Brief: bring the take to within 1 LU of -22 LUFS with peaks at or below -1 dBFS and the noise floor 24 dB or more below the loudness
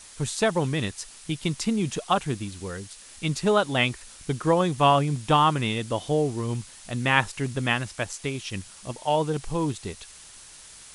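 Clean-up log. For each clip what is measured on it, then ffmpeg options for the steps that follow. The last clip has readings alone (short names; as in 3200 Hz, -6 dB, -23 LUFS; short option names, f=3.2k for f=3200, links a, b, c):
noise floor -47 dBFS; noise floor target -50 dBFS; loudness -25.5 LUFS; peak -3.5 dBFS; loudness target -22.0 LUFS
-> -af "afftdn=nr=6:nf=-47"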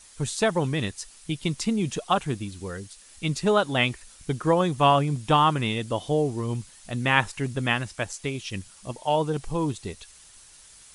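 noise floor -51 dBFS; loudness -25.5 LUFS; peak -3.5 dBFS; loudness target -22.0 LUFS
-> -af "volume=3.5dB,alimiter=limit=-1dB:level=0:latency=1"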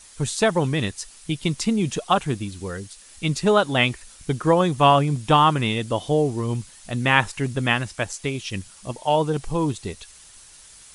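loudness -22.0 LUFS; peak -1.0 dBFS; noise floor -48 dBFS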